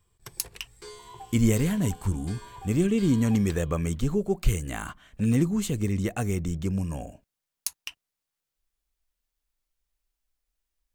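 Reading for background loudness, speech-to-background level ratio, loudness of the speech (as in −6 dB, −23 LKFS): −46.5 LKFS, 19.0 dB, −27.5 LKFS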